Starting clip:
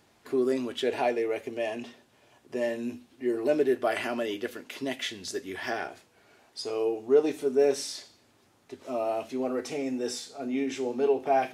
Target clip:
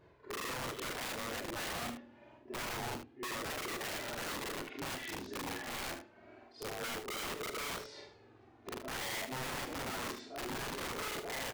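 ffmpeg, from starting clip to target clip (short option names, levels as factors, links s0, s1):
-filter_complex "[0:a]afftfilt=real='re':imag='-im':win_size=4096:overlap=0.75,areverse,acompressor=threshold=0.00708:ratio=6,areverse,flanger=delay=1.8:depth=1.9:regen=-12:speed=0.26:shape=triangular,acrossover=split=490[s0][s1];[s1]adynamicsmooth=sensitivity=1.5:basefreq=2000[s2];[s0][s2]amix=inputs=2:normalize=0,aeval=exprs='(mod(224*val(0)+1,2)-1)/224':c=same,aecho=1:1:46|76:0.188|0.316,volume=3.76"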